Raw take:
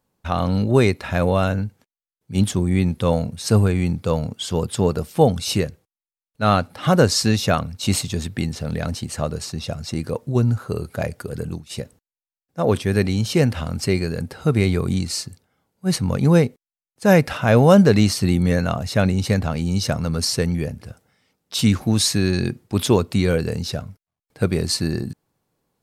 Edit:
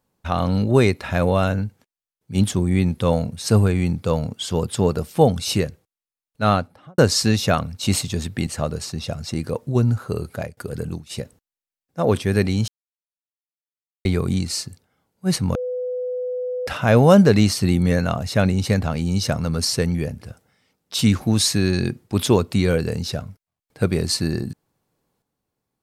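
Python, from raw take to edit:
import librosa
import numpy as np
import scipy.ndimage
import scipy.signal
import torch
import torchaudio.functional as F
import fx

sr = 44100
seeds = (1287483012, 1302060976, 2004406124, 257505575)

y = fx.studio_fade_out(x, sr, start_s=6.42, length_s=0.56)
y = fx.edit(y, sr, fx.cut(start_s=8.47, length_s=0.6),
    fx.fade_out_to(start_s=10.92, length_s=0.25, floor_db=-24.0),
    fx.silence(start_s=13.28, length_s=1.37),
    fx.bleep(start_s=16.15, length_s=1.12, hz=500.0, db=-23.0), tone=tone)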